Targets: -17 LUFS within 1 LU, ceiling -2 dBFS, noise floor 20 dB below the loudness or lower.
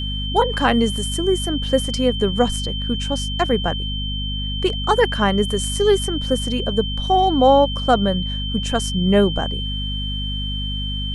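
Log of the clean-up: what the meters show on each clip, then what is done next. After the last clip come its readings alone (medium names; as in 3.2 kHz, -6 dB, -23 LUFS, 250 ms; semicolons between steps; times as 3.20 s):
hum 50 Hz; highest harmonic 250 Hz; hum level -23 dBFS; steady tone 3.1 kHz; tone level -27 dBFS; loudness -20.0 LUFS; peak level -2.5 dBFS; loudness target -17.0 LUFS
-> hum notches 50/100/150/200/250 Hz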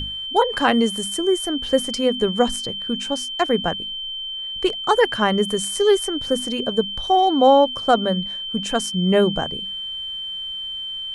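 hum not found; steady tone 3.1 kHz; tone level -27 dBFS
-> band-stop 3.1 kHz, Q 30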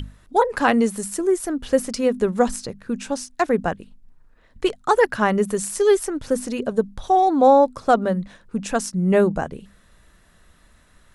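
steady tone not found; loudness -21.0 LUFS; peak level -3.5 dBFS; loudness target -17.0 LUFS
-> trim +4 dB; peak limiter -2 dBFS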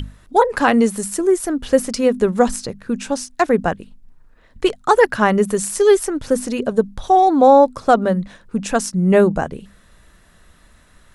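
loudness -17.0 LUFS; peak level -2.0 dBFS; noise floor -51 dBFS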